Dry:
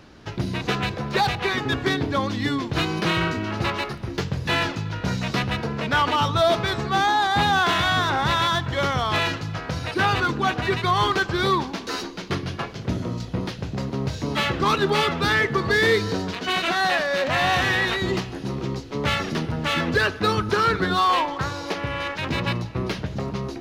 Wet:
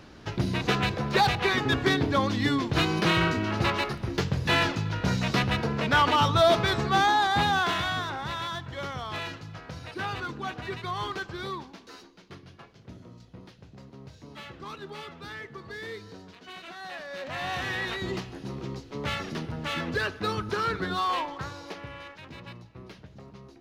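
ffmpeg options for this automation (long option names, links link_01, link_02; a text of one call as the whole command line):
ffmpeg -i in.wav -af "volume=11dB,afade=type=out:start_time=6.88:duration=1.3:silence=0.281838,afade=type=out:start_time=11.17:duration=0.89:silence=0.398107,afade=type=in:start_time=16.81:duration=1.23:silence=0.251189,afade=type=out:start_time=21.18:duration=1.09:silence=0.281838" out.wav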